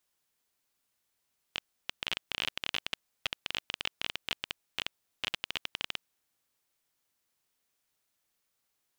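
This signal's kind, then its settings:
Geiger counter clicks 17 per second −14 dBFS 4.45 s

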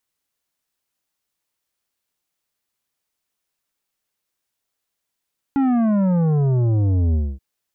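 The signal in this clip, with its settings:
bass drop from 280 Hz, over 1.83 s, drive 10 dB, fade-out 0.25 s, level −16 dB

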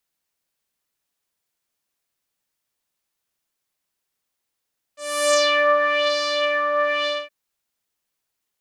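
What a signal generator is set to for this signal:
subtractive patch with filter wobble D5, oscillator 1 saw, sub −25 dB, filter lowpass, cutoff 1,300 Hz, filter envelope 2.5 octaves, filter decay 0.77 s, attack 331 ms, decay 0.90 s, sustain −5 dB, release 0.23 s, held 2.09 s, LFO 1 Hz, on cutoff 0.9 octaves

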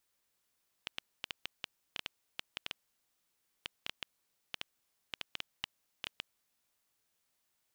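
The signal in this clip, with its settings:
Geiger counter clicks 5.1 per second −19 dBFS 5.44 s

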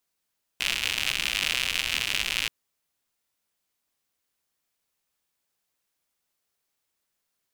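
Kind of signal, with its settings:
rain-like ticks over hiss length 1.88 s, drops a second 120, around 2,700 Hz, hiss −14.5 dB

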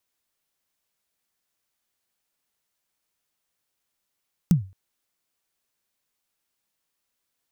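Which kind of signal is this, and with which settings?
synth kick length 0.22 s, from 190 Hz, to 95 Hz, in 119 ms, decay 0.32 s, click on, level −10 dB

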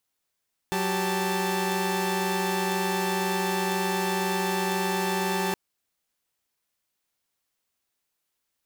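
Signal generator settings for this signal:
held notes F#3/G4/A5 saw, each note −26.5 dBFS 4.82 s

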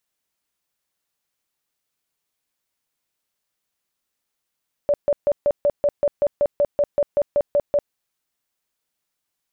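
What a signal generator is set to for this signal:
tone bursts 579 Hz, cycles 28, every 0.19 s, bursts 16, −14 dBFS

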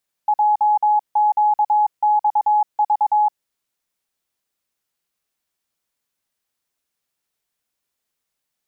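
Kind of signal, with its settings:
Morse code "JQXV" 22 words per minute 842 Hz −12.5 dBFS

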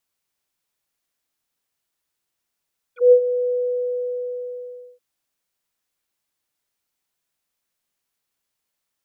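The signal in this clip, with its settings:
subtractive voice square B4 24 dB per octave, low-pass 500 Hz, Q 8.5, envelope 3 octaves, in 0.05 s, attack 158 ms, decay 0.08 s, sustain −12.5 dB, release 1.49 s, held 0.54 s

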